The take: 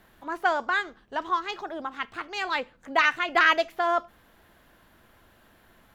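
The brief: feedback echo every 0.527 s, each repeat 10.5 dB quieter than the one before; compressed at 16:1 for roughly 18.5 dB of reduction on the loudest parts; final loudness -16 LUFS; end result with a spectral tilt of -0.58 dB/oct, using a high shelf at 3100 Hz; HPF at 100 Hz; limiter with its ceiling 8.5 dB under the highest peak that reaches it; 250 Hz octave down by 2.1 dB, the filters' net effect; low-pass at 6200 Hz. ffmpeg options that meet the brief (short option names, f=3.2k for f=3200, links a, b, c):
-af "highpass=100,lowpass=6.2k,equalizer=f=250:t=o:g=-3,highshelf=f=3.1k:g=-4,acompressor=threshold=-35dB:ratio=16,alimiter=level_in=8.5dB:limit=-24dB:level=0:latency=1,volume=-8.5dB,aecho=1:1:527|1054|1581:0.299|0.0896|0.0269,volume=27.5dB"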